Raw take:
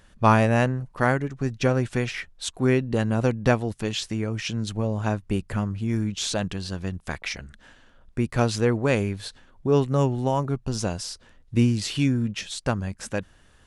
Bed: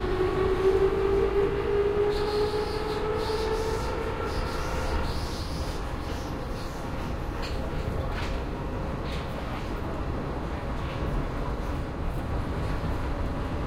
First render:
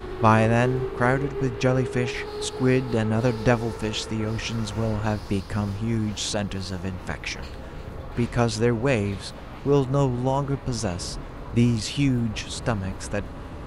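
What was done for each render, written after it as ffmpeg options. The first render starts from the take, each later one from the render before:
ffmpeg -i in.wav -i bed.wav -filter_complex "[1:a]volume=-6.5dB[link_01];[0:a][link_01]amix=inputs=2:normalize=0" out.wav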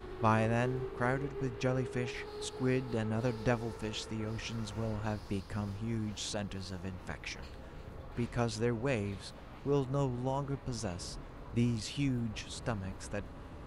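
ffmpeg -i in.wav -af "volume=-11dB" out.wav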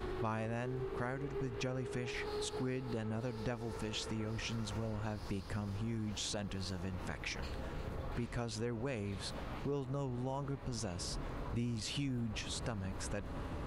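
ffmpeg -i in.wav -filter_complex "[0:a]acompressor=threshold=-41dB:ratio=3,asplit=2[link_01][link_02];[link_02]alimiter=level_in=16.5dB:limit=-24dB:level=0:latency=1:release=96,volume=-16.5dB,volume=1dB[link_03];[link_01][link_03]amix=inputs=2:normalize=0" out.wav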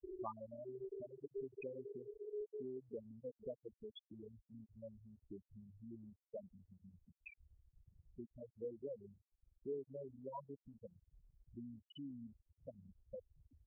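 ffmpeg -i in.wav -filter_complex "[0:a]afftfilt=real='re*gte(hypot(re,im),0.0631)':imag='im*gte(hypot(re,im),0.0631)':win_size=1024:overlap=0.75,acrossover=split=330 5000:gain=0.0891 1 0.2[link_01][link_02][link_03];[link_01][link_02][link_03]amix=inputs=3:normalize=0" out.wav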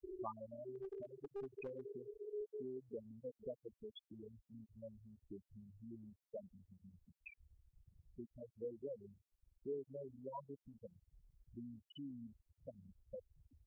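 ffmpeg -i in.wav -filter_complex "[0:a]asettb=1/sr,asplit=3[link_01][link_02][link_03];[link_01]atrim=end=0.744[link_04];[link_02]atrim=start=0.74:end=1.82,asetpts=PTS-STARTPTS,afade=type=in:duration=0.004:curve=qsin,afade=type=out:start_time=1.076:duration=0.004:curve=qsin,aeval=exprs='clip(val(0),-1,0.00668)':channel_layout=same[link_05];[link_03]atrim=start=1.816[link_06];[link_04][link_05]acrossfade=duration=0.004:curve1=hsin:curve2=qsin[link_07];[link_07][link_06]acrossfade=duration=0.004:curve1=qsin:curve2=hsin" out.wav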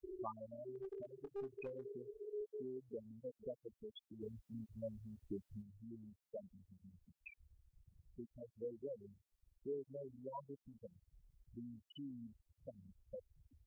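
ffmpeg -i in.wav -filter_complex "[0:a]asettb=1/sr,asplit=3[link_01][link_02][link_03];[link_01]atrim=end=1.164[link_04];[link_02]atrim=start=1.16:end=2.23,asetpts=PTS-STARTPTS,afade=type=in:duration=0.004:curve=qsin,afade=type=out:start_time=1.066:duration=0.004:curve=qsin,asplit=2[link_05][link_06];[link_06]adelay=25,volume=-12dB[link_07];[link_05][link_07]amix=inputs=2:normalize=0,atrim=end_sample=47187[link_08];[link_03]atrim=start=2.226[link_09];[link_04][link_08]acrossfade=duration=0.004:curve1=hsin:curve2=qsin[link_10];[link_10][link_09]acrossfade=duration=0.004:curve1=qsin:curve2=hsin,asplit=3[link_11][link_12][link_13];[link_11]afade=type=out:start_time=4.2:duration=0.02[link_14];[link_12]acontrast=87,afade=type=in:start_time=4.2:duration=0.02,afade=type=out:start_time=5.61:duration=0.02[link_15];[link_13]afade=type=in:start_time=5.61:duration=0.02[link_16];[link_14][link_15][link_16]amix=inputs=3:normalize=0" out.wav

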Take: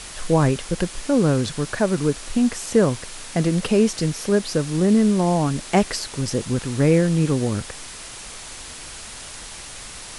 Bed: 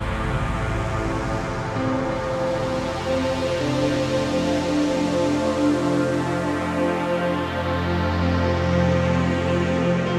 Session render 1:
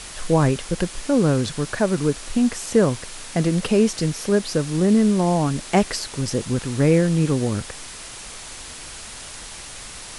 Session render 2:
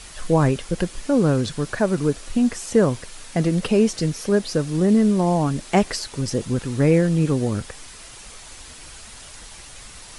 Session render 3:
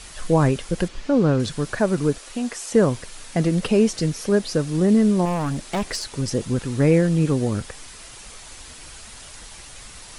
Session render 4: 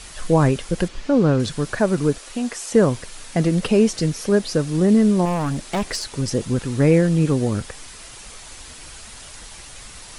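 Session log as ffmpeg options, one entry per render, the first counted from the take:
ffmpeg -i in.wav -af anull out.wav
ffmpeg -i in.wav -af "afftdn=noise_reduction=6:noise_floor=-37" out.wav
ffmpeg -i in.wav -filter_complex "[0:a]asettb=1/sr,asplit=3[link_01][link_02][link_03];[link_01]atrim=end=0.884[link_04];[link_02]atrim=start=0.88:end=1.4,asetpts=PTS-STARTPTS,afade=type=in:duration=0.004:curve=qsin,afade=type=out:start_time=0.516:duration=0.004:curve=qsin,lowpass=4900[link_05];[link_03]atrim=start=1.396[link_06];[link_04][link_05]acrossfade=duration=0.004:curve1=hsin:curve2=qsin[link_07];[link_07][link_06]acrossfade=duration=0.004:curve1=qsin:curve2=hsin,asettb=1/sr,asplit=3[link_08][link_09][link_10];[link_08]atrim=end=2.184[link_11];[link_09]atrim=start=2.18:end=2.74,asetpts=PTS-STARTPTS,afade=type=in:duration=0.004:curve=qsin,afade=type=out:start_time=0.556:duration=0.004:curve=qsin,bass=frequency=250:gain=-15,treble=frequency=4000:gain=0[link_12];[link_10]atrim=start=2.736[link_13];[link_11][link_12]acrossfade=duration=0.004:curve1=hsin:curve2=qsin[link_14];[link_14][link_13]acrossfade=duration=0.004:curve1=qsin:curve2=hsin,asettb=1/sr,asplit=3[link_15][link_16][link_17];[link_15]atrim=end=5.254[link_18];[link_16]atrim=start=5.25:end=6.12,asetpts=PTS-STARTPTS,afade=type=in:duration=0.004:curve=qsin,afade=type=out:start_time=0.866:duration=0.004:curve=qsin,asoftclip=type=hard:threshold=-20.5dB[link_19];[link_17]atrim=start=6.116[link_20];[link_18][link_19]acrossfade=duration=0.004:curve1=hsin:curve2=qsin[link_21];[link_21][link_20]acrossfade=duration=0.004:curve1=qsin:curve2=hsin" out.wav
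ffmpeg -i in.wav -af "volume=1.5dB" out.wav

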